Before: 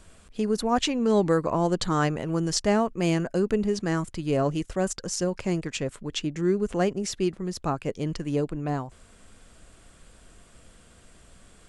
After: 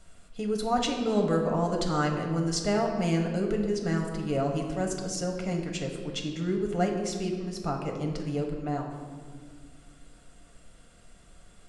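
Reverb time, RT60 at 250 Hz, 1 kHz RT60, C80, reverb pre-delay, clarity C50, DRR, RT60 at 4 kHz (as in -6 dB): 1.9 s, 2.8 s, 1.6 s, 6.5 dB, 4 ms, 5.0 dB, 1.5 dB, 1.2 s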